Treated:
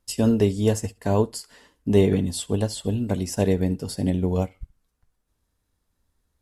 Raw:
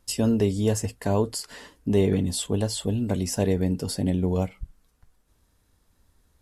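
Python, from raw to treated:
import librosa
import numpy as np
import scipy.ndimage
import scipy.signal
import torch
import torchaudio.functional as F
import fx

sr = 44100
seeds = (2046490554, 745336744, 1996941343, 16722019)

p1 = x + fx.echo_feedback(x, sr, ms=68, feedback_pct=24, wet_db=-19, dry=0)
p2 = fx.upward_expand(p1, sr, threshold_db=-43.0, expansion=1.5)
y = p2 * 10.0 ** (4.0 / 20.0)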